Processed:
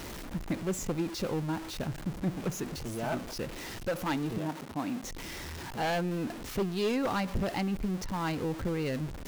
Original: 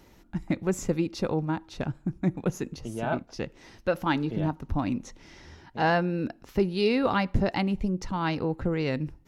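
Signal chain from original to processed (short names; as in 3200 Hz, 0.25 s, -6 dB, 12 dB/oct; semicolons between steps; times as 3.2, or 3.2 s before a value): zero-crossing step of -29.5 dBFS; 4.38–5.04 HPF 200 Hz 12 dB/oct; wavefolder -16.5 dBFS; gain -6.5 dB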